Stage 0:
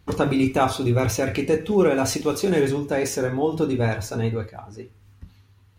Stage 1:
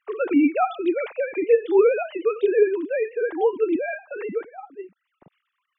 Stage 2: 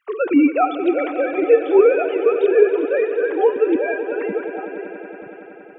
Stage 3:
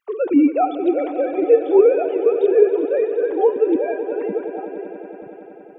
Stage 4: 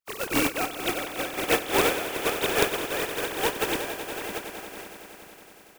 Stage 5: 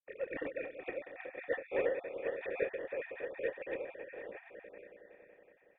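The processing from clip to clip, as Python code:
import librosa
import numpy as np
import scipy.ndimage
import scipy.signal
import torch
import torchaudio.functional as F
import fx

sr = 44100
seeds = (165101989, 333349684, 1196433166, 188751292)

y1 = fx.sine_speech(x, sr)
y2 = fx.echo_swell(y1, sr, ms=93, loudest=5, wet_db=-16)
y2 = y2 * 10.0 ** (4.0 / 20.0)
y3 = fx.band_shelf(y2, sr, hz=1900.0, db=-10.0, octaves=1.7)
y4 = fx.spec_flatten(y3, sr, power=0.26)
y4 = y4 * 10.0 ** (-10.0 / 20.0)
y5 = fx.spec_dropout(y4, sr, seeds[0], share_pct=27)
y5 = fx.formant_cascade(y5, sr, vowel='e')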